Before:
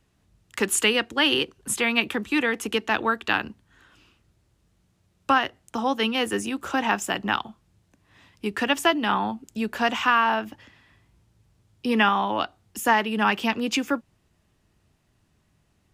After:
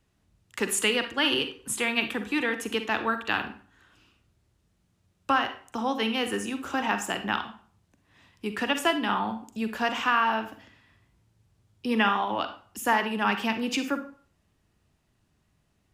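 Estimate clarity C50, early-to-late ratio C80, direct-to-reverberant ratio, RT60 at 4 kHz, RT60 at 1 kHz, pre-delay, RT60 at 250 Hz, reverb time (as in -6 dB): 10.0 dB, 15.0 dB, 8.0 dB, 0.35 s, 0.50 s, 38 ms, 0.45 s, 0.45 s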